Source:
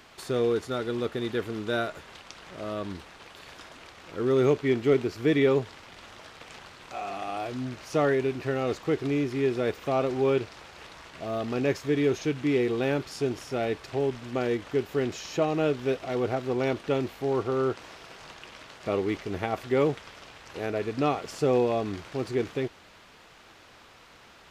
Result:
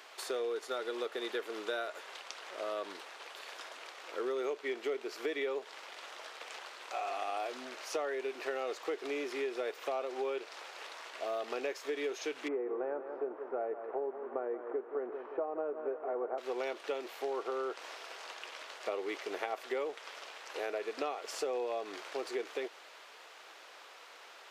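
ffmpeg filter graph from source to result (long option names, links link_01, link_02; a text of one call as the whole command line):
ffmpeg -i in.wav -filter_complex "[0:a]asettb=1/sr,asplit=3[link_01][link_02][link_03];[link_01]atrim=end=12.484[link_04];[link_02]atrim=start=12.48:end=16.38,asetpts=PTS-STARTPTS,afade=type=in:duration=0.004:curve=qsin,afade=type=out:start_time=3.896:duration=0.004:curve=qsin,lowpass=frequency=1300:width=0.5412,lowpass=frequency=1300:width=1.3066,aecho=1:1:174|348|522|696|870:0.237|0.121|0.0617|0.0315|0.016,atrim=end_sample=171990[link_05];[link_03]atrim=start=16.376[link_06];[link_04][link_05]acrossfade=duration=0.004:curve1=hsin:curve2=qsin[link_07];[link_07][link_06]acrossfade=duration=0.004:curve1=qsin:curve2=hsin,highpass=frequency=420:width=0.5412,highpass=frequency=420:width=1.3066,acompressor=threshold=-33dB:ratio=6" out.wav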